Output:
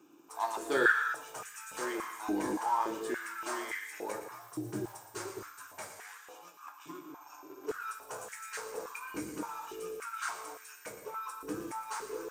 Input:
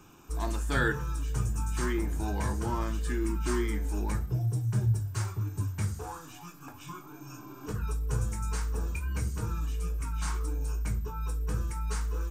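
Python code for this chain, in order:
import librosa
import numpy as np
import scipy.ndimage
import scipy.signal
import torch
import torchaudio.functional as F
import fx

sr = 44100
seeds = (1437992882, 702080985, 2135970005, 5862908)

y = fx.law_mismatch(x, sr, coded='A')
y = y + 10.0 ** (-11.5 / 20.0) * np.pad(y, (int(116 * sr / 1000.0), 0))[:len(y)]
y = fx.rev_gated(y, sr, seeds[0], gate_ms=290, shape='flat', drr_db=8.0)
y = fx.filter_held_highpass(y, sr, hz=3.5, low_hz=310.0, high_hz=1800.0)
y = F.gain(torch.from_numpy(y), -2.5).numpy()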